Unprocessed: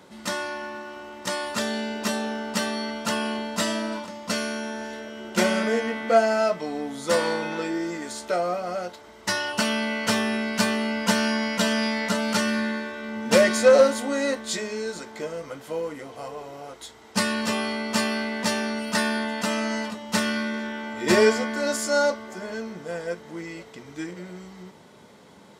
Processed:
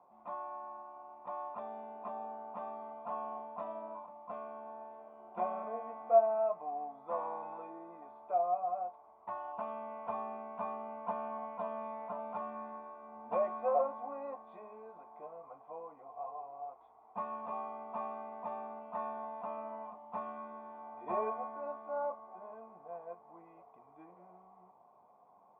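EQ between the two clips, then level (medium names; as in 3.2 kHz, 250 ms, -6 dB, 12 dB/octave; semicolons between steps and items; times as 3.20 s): cascade formant filter a; +1.0 dB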